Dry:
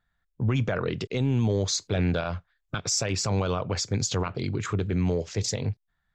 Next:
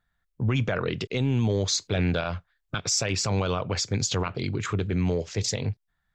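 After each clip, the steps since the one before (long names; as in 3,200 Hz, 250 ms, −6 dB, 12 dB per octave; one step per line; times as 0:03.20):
dynamic equaliser 2,800 Hz, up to +4 dB, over −43 dBFS, Q 0.88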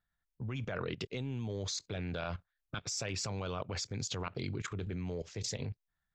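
output level in coarse steps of 16 dB
level −5.5 dB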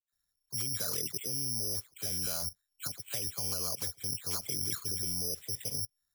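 all-pass dispersion lows, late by 128 ms, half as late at 2,300 Hz
bad sample-rate conversion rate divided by 8×, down filtered, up zero stuff
level −5.5 dB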